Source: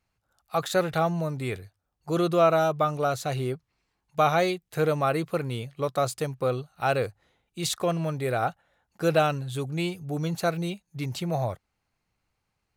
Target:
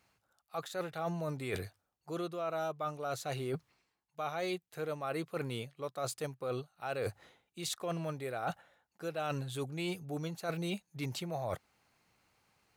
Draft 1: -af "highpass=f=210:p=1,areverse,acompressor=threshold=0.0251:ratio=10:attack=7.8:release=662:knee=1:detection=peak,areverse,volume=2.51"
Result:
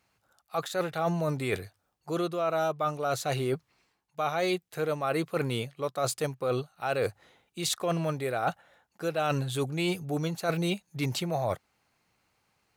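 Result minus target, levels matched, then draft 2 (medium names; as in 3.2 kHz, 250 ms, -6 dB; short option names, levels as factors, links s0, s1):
compression: peak gain reduction -8 dB
-af "highpass=f=210:p=1,areverse,acompressor=threshold=0.00891:ratio=10:attack=7.8:release=662:knee=1:detection=peak,areverse,volume=2.51"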